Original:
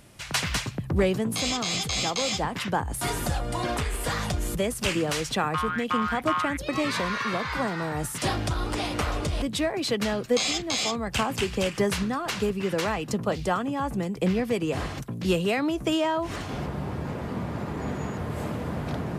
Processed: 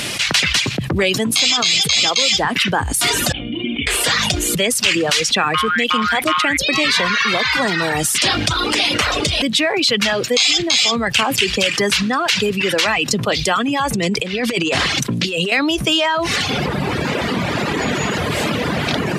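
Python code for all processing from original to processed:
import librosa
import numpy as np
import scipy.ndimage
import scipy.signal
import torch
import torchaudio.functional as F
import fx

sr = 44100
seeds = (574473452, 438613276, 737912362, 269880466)

y = fx.chain(x, sr, fx.formant_cascade(vowel='i'),
    fx.hum_notches(base_hz=50, count=9), at=(3.32, 3.87))
y = fx.chain(y, sr, fx.lowpass(hz=11000.0, slope=12),
    fx.over_compress(threshold_db=-29.0, ratio=-0.5), at=(13.93, 15.52))
y = fx.weighting(y, sr, curve='D')
y = fx.dereverb_blind(y, sr, rt60_s=1.3)
y = fx.env_flatten(y, sr, amount_pct=70)
y = y * 10.0 ** (1.0 / 20.0)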